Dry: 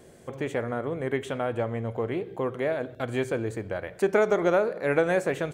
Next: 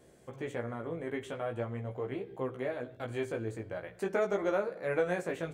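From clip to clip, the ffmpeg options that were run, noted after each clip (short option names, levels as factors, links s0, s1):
-af "flanger=delay=15:depth=3.4:speed=0.44,volume=0.562"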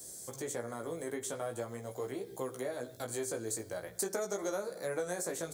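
-filter_complex "[0:a]acrossover=split=270|1800[s0][s1][s2];[s0]acompressor=threshold=0.00316:ratio=4[s3];[s1]acompressor=threshold=0.02:ratio=4[s4];[s2]acompressor=threshold=0.00141:ratio=4[s5];[s3][s4][s5]amix=inputs=3:normalize=0,aexciter=amount=13.2:drive=6.1:freq=4200"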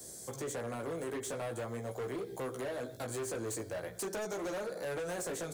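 -filter_complex "[0:a]highshelf=f=4500:g=-6.5,acrossover=split=150[s0][s1];[s1]asoftclip=type=hard:threshold=0.0106[s2];[s0][s2]amix=inputs=2:normalize=0,volume=1.58"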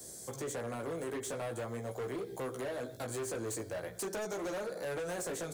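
-af anull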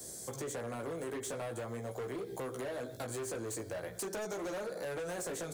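-af "acompressor=threshold=0.0112:ratio=6,volume=1.26"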